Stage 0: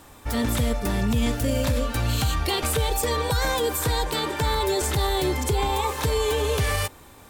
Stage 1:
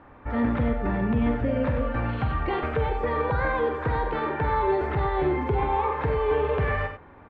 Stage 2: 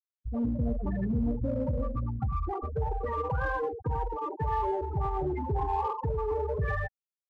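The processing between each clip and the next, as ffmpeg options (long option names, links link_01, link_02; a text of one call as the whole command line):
ffmpeg -i in.wav -filter_complex "[0:a]lowpass=frequency=2000:width=0.5412,lowpass=frequency=2000:width=1.3066,lowshelf=frequency=130:gain=-4,asplit=2[link_01][link_02];[link_02]aecho=0:1:46.65|93.29:0.355|0.355[link_03];[link_01][link_03]amix=inputs=2:normalize=0" out.wav
ffmpeg -i in.wav -filter_complex "[0:a]afftfilt=real='re*gte(hypot(re,im),0.141)':imag='im*gte(hypot(re,im),0.141)':win_size=1024:overlap=0.75,equalizer=frequency=380:width=1.2:gain=-4.5,asplit=2[link_01][link_02];[link_02]asoftclip=type=hard:threshold=-29dB,volume=-9.5dB[link_03];[link_01][link_03]amix=inputs=2:normalize=0,volume=-4.5dB" out.wav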